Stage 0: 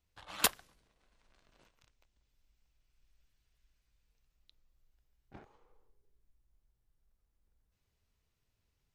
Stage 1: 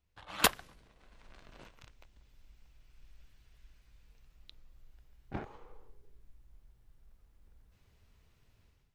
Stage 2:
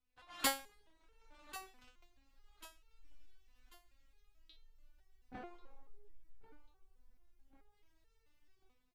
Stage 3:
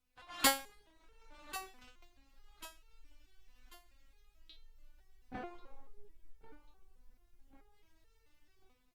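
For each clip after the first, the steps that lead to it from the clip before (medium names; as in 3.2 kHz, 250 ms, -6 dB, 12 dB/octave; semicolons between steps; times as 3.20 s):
tone controls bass +2 dB, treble -6 dB; level rider gain up to 13 dB
feedback delay 1091 ms, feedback 37%, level -14.5 dB; resonator arpeggio 4.6 Hz 250–450 Hz; trim +8 dB
trim +5 dB; Opus 48 kbps 48 kHz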